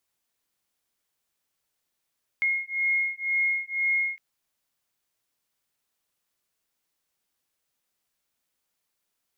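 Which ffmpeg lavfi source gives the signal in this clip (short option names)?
-f lavfi -i "aevalsrc='0.0473*(sin(2*PI*2150*t)+sin(2*PI*2152*t))':d=1.76:s=44100"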